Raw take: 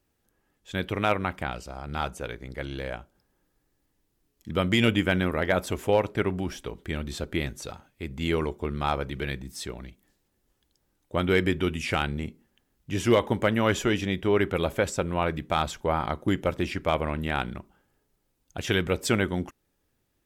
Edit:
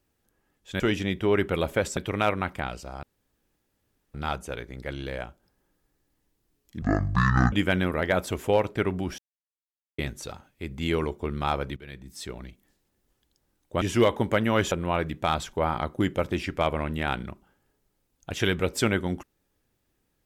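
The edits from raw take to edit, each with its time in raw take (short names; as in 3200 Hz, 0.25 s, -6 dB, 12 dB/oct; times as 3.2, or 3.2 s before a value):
1.86 insert room tone 1.11 s
4.54–4.92 speed 54%
6.58–7.38 mute
9.16–9.78 fade in, from -20 dB
11.21–12.92 cut
13.82–14.99 move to 0.8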